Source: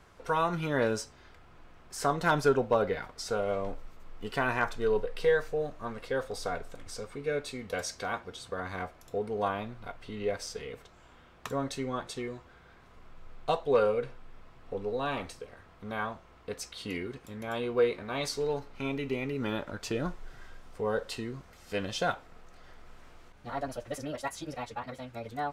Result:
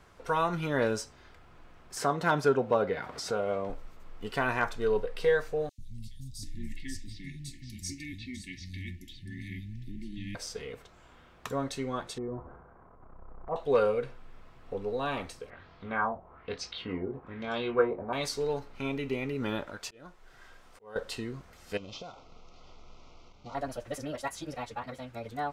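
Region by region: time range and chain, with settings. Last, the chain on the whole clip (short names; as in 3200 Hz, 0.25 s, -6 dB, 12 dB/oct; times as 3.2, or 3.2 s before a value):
1.97–3.7 high shelf 4000 Hz -6 dB + upward compressor, threshold -29 dBFS + HPF 98 Hz
5.69–10.35 brick-wall FIR band-stop 360–1700 Hz + low shelf 200 Hz +7 dB + three bands offset in time highs, lows, mids 90/740 ms, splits 180/4100 Hz
12.18–13.56 LPF 1100 Hz 24 dB/oct + transient shaper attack -11 dB, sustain +9 dB + mismatched tape noise reduction encoder only
15.5–18.13 high shelf 7000 Hz -9 dB + doubler 22 ms -6.5 dB + LFO low-pass sine 1.1 Hz 690–4900 Hz
19.67–20.96 low shelf 310 Hz -9 dB + auto swell 0.568 s
21.77–23.55 CVSD 32 kbps + compressor 12:1, threshold -39 dBFS + Butterworth band-stop 1700 Hz, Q 2
whole clip: dry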